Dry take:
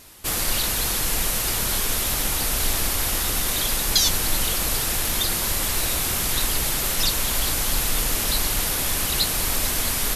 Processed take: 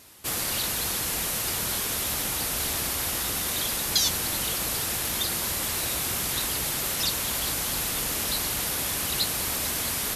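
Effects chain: HPF 75 Hz 12 dB/oct; gain -4 dB

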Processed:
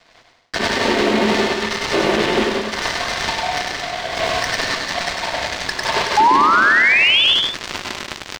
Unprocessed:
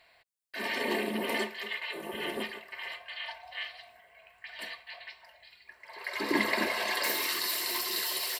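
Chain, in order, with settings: switching dead time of 0.21 ms; recorder AGC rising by 29 dB/s; high shelf 3700 Hz +9.5 dB; painted sound rise, 6.17–7.24, 830–3600 Hz -20 dBFS; air absorption 160 m; bouncing-ball echo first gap 0.1 s, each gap 0.75×, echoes 5; maximiser +19.5 dB; gain -4.5 dB

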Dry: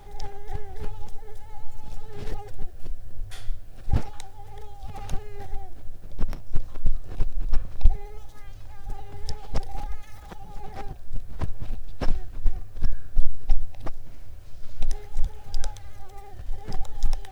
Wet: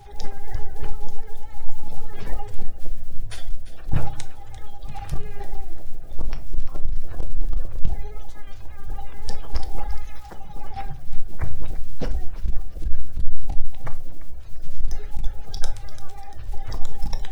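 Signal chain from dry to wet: bin magnitudes rounded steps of 30 dB; hard clip -14.5 dBFS, distortion -7 dB; thin delay 0.344 s, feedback 44%, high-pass 1500 Hz, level -13 dB; reverb RT60 0.45 s, pre-delay 6 ms, DRR 8 dB

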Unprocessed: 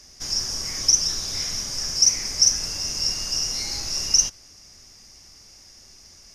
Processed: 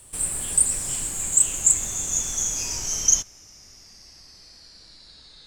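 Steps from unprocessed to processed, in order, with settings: speed glide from 158% -> 74%

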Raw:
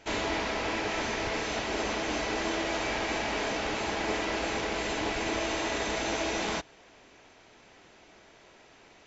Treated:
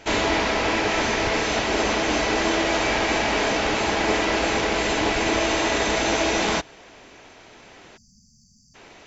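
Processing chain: spectral delete 7.97–8.75, 250–4500 Hz; gain +9 dB

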